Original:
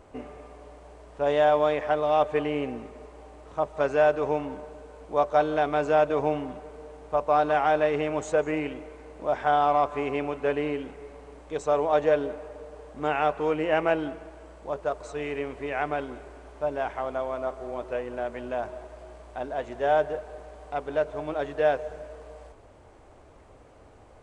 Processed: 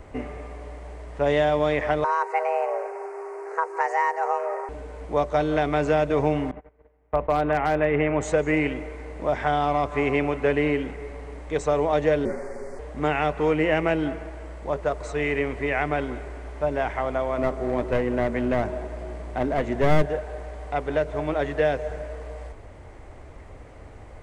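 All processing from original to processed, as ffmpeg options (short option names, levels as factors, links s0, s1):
-filter_complex "[0:a]asettb=1/sr,asplit=3[s0][s1][s2];[s0]atrim=end=2.044[s3];[s1]atrim=start=2.04:end=4.69,asetpts=PTS-STARTPTS,afade=t=in:d=0.004:c=qsin,afade=t=out:st=2.646:d=0.004:c=qsin,lowshelf=f=220:g=10,afreqshift=340,asuperstop=centerf=3400:order=4:qfactor=1.4[s4];[s2]atrim=start=4.686[s5];[s3][s4]acrossfade=d=0.004:c1=hsin:c2=qsin[s6];[s6][s5]acrossfade=d=0.004:c1=qsin:c2=hsin,asettb=1/sr,asplit=3[s7][s8][s9];[s7]atrim=end=6.514[s10];[s8]atrim=start=6.51:end=8.21,asetpts=PTS-STARTPTS,afade=t=in:d=0.004:c=qsin,afade=t=out:st=1.696:d=0.004:c=qsin,lowpass=f=2700:w=0.5412,lowpass=f=2700:w=1.3066,agate=range=0.0447:threshold=0.01:ratio=16:release=100:detection=peak,asoftclip=type=hard:threshold=0.211[s11];[s9]atrim=start=8.206[s12];[s10][s11]acrossfade=d=0.004:c1=hsin:c2=qsin[s13];[s13][s12]acrossfade=d=0.004:c1=qsin:c2=hsin,asettb=1/sr,asplit=3[s14][s15][s16];[s14]atrim=end=12.254[s17];[s15]atrim=start=12.25:end=12.79,asetpts=PTS-STARTPTS,afade=t=in:d=0.004:c=qsin,afade=t=out:st=0.536:d=0.004:c=qsin,asuperstop=centerf=3200:order=8:qfactor=1.4,highshelf=f=3500:g=9,afreqshift=-48[s18];[s16]atrim=start=12.786[s19];[s17][s18]acrossfade=d=0.004:c1=hsin:c2=qsin[s20];[s20][s19]acrossfade=d=0.004:c1=qsin:c2=hsin,asettb=1/sr,asplit=3[s21][s22][s23];[s21]atrim=end=17.384[s24];[s22]atrim=start=17.38:end=20.06,asetpts=PTS-STARTPTS,afade=t=in:d=0.004:c=qsin,afade=t=out:st=2.676:d=0.004:c=qsin,equalizer=f=230:t=o:w=1.9:g=8,aeval=exprs='clip(val(0),-1,0.0473)':c=same[s25];[s23]atrim=start=20.056[s26];[s24][s25]acrossfade=d=0.004:c1=hsin:c2=qsin[s27];[s27][s26]acrossfade=d=0.004:c1=qsin:c2=hsin,equalizer=f=2000:t=o:w=0.39:g=8.5,acrossover=split=390|3000[s28][s29][s30];[s29]acompressor=threshold=0.0447:ratio=6[s31];[s28][s31][s30]amix=inputs=3:normalize=0,lowshelf=f=150:g=9.5,volume=1.68"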